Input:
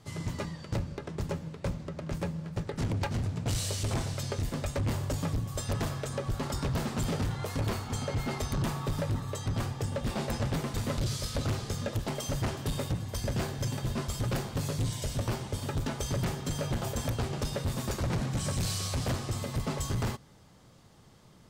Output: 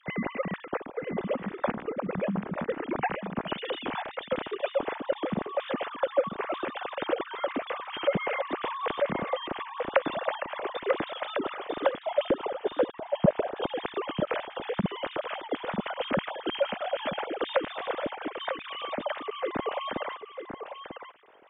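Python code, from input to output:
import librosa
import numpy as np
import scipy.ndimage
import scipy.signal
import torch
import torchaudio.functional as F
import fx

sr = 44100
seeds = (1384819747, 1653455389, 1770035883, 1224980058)

y = fx.sine_speech(x, sr)
y = fx.tilt_shelf(y, sr, db=9.5, hz=850.0, at=(11.97, 13.56))
y = y + 10.0 ** (-8.5 / 20.0) * np.pad(y, (int(944 * sr / 1000.0), 0))[:len(y)]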